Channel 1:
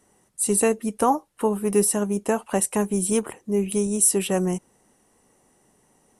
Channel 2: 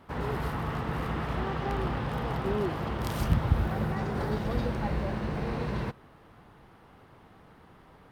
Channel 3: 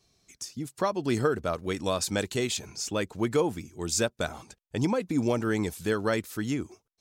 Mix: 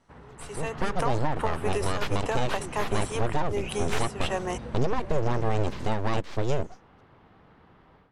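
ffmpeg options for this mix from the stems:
-filter_complex "[0:a]highpass=760,acompressor=threshold=0.0316:ratio=8,aeval=exprs='0.15*(cos(1*acos(clip(val(0)/0.15,-1,1)))-cos(1*PI/2))+0.0168*(cos(4*acos(clip(val(0)/0.15,-1,1)))-cos(4*PI/2))':c=same,volume=0.596[s0];[1:a]acompressor=threshold=0.0224:ratio=6,volume=0.224[s1];[2:a]equalizer=f=1600:w=0.48:g=-13,aeval=exprs='abs(val(0))':c=same,volume=0.891[s2];[s0][s1][s2]amix=inputs=3:normalize=0,lowpass=4400,dynaudnorm=f=420:g=3:m=3.98,alimiter=limit=0.2:level=0:latency=1:release=297"

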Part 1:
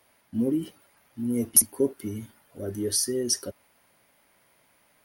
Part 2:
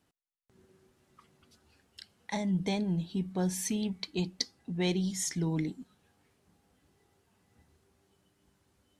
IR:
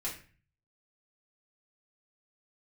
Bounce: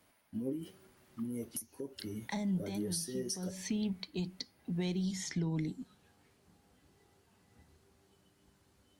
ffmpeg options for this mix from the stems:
-filter_complex "[0:a]bandreject=f=189.9:t=h:w=4,bandreject=f=379.8:t=h:w=4,bandreject=f=569.7:t=h:w=4,bandreject=f=759.6:t=h:w=4,bandreject=f=949.5:t=h:w=4,bandreject=f=1139.4:t=h:w=4,bandreject=f=1329.3:t=h:w=4,bandreject=f=1519.2:t=h:w=4,bandreject=f=1709.1:t=h:w=4,bandreject=f=1899:t=h:w=4,bandreject=f=2088.9:t=h:w=4,bandreject=f=2278.8:t=h:w=4,bandreject=f=2468.7:t=h:w=4,bandreject=f=2658.6:t=h:w=4,bandreject=f=2848.5:t=h:w=4,bandreject=f=3038.4:t=h:w=4,bandreject=f=3228.3:t=h:w=4,bandreject=f=3418.2:t=h:w=4,bandreject=f=3608.1:t=h:w=4,bandreject=f=3798:t=h:w=4,bandreject=f=3987.9:t=h:w=4,bandreject=f=4177.8:t=h:w=4,bandreject=f=4367.7:t=h:w=4,bandreject=f=4557.6:t=h:w=4,bandreject=f=4747.5:t=h:w=4,bandreject=f=4937.4:t=h:w=4,bandreject=f=5127.3:t=h:w=4,bandreject=f=5317.2:t=h:w=4,bandreject=f=5507.1:t=h:w=4,bandreject=f=5697:t=h:w=4,bandreject=f=5886.9:t=h:w=4,bandreject=f=6076.8:t=h:w=4,bandreject=f=6266.7:t=h:w=4,bandreject=f=6456.6:t=h:w=4,bandreject=f=6646.5:t=h:w=4,bandreject=f=6836.4:t=h:w=4,acompressor=threshold=0.0398:ratio=3,flanger=delay=6.1:depth=9.2:regen=46:speed=1.1:shape=sinusoidal,volume=0.316,asplit=2[s0][s1];[1:a]acrossover=split=230|5200[s2][s3][s4];[s2]acompressor=threshold=0.0178:ratio=4[s5];[s3]acompressor=threshold=0.00891:ratio=4[s6];[s4]acompressor=threshold=0.00141:ratio=4[s7];[s5][s6][s7]amix=inputs=3:normalize=0,equalizer=f=4400:t=o:w=0.21:g=2.5,volume=0.562[s8];[s1]apad=whole_len=396598[s9];[s8][s9]sidechaincompress=threshold=0.00251:ratio=8:attack=16:release=163[s10];[s0][s10]amix=inputs=2:normalize=0,acontrast=77,alimiter=level_in=1.19:limit=0.0631:level=0:latency=1:release=465,volume=0.841"

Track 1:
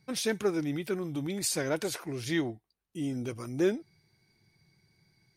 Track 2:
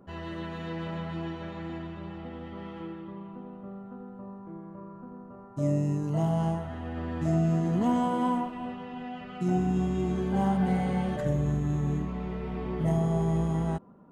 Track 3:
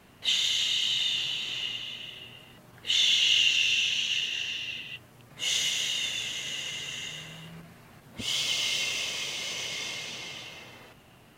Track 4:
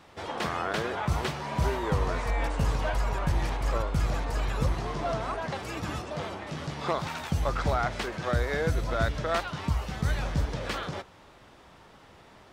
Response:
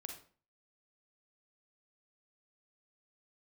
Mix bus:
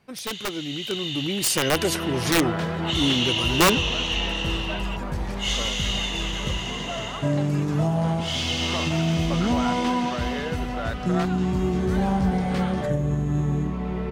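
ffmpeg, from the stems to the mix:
-filter_complex "[0:a]aeval=exprs='(mod(11.2*val(0)+1,2)-1)/11.2':c=same,volume=0.75[s0];[1:a]adelay=1650,volume=0.531[s1];[2:a]highshelf=f=6900:g=-11,volume=0.398[s2];[3:a]adelay=1850,volume=0.188[s3];[s1][s2]amix=inputs=2:normalize=0,alimiter=level_in=1.41:limit=0.0631:level=0:latency=1:release=357,volume=0.708,volume=1[s4];[s0][s3][s4]amix=inputs=3:normalize=0,dynaudnorm=f=220:g=11:m=3.98"

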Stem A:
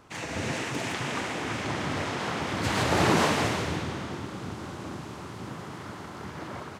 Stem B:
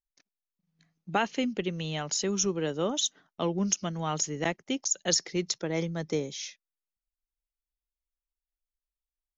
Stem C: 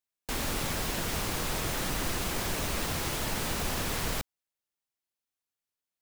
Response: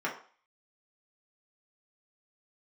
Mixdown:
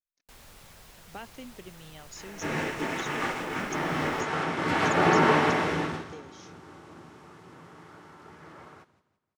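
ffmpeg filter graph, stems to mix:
-filter_complex "[0:a]agate=range=0.2:threshold=0.0282:ratio=16:detection=peak,acrossover=split=4300[s0][s1];[s1]acompressor=threshold=0.00562:ratio=4:attack=1:release=60[s2];[s0][s2]amix=inputs=2:normalize=0,adelay=2050,volume=0.891,asplit=3[s3][s4][s5];[s4]volume=0.531[s6];[s5]volume=0.251[s7];[1:a]volume=0.168,asplit=2[s8][s9];[2:a]equalizer=f=290:t=o:w=0.83:g=-7.5,volume=0.112[s10];[s9]apad=whole_len=389997[s11];[s3][s11]sidechaincompress=threshold=0.00631:ratio=8:attack=7:release=562[s12];[3:a]atrim=start_sample=2205[s13];[s6][s13]afir=irnorm=-1:irlink=0[s14];[s7]aecho=0:1:170|340|510|680|850:1|0.36|0.13|0.0467|0.0168[s15];[s12][s8][s10][s14][s15]amix=inputs=5:normalize=0"

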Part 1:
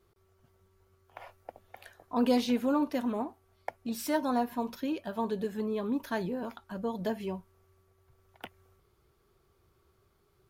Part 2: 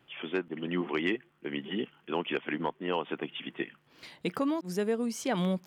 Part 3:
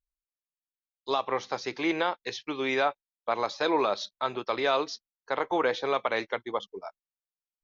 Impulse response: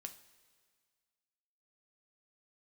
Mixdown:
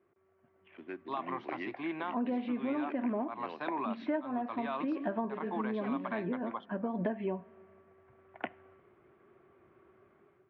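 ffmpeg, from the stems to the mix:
-filter_complex "[0:a]lowpass=1900,dynaudnorm=f=540:g=3:m=3.16,volume=1.12,asplit=2[s0][s1];[s1]volume=0.531[s2];[1:a]adynamicsmooth=sensitivity=6:basefreq=930,acrusher=bits=5:mode=log:mix=0:aa=0.000001,adelay=550,volume=0.316,asplit=2[s3][s4];[s4]volume=0.473[s5];[2:a]equalizer=f=125:t=o:w=1:g=10,equalizer=f=250:t=o:w=1:g=4,equalizer=f=500:t=o:w=1:g=-11,equalizer=f=1000:t=o:w=1:g=9,equalizer=f=2000:t=o:w=1:g=-7,volume=0.562,asplit=2[s6][s7];[s7]apad=whole_len=462703[s8];[s0][s8]sidechaincompress=threshold=0.00282:ratio=8:attack=16:release=147[s9];[3:a]atrim=start_sample=2205[s10];[s2][s5]amix=inputs=2:normalize=0[s11];[s11][s10]afir=irnorm=-1:irlink=0[s12];[s9][s3][s6][s12]amix=inputs=4:normalize=0,highpass=250,equalizer=f=460:t=q:w=4:g=-8,equalizer=f=880:t=q:w=4:g=-7,equalizer=f=1300:t=q:w=4:g=-7,lowpass=f=2600:w=0.5412,lowpass=f=2600:w=1.3066,acompressor=threshold=0.0316:ratio=8"

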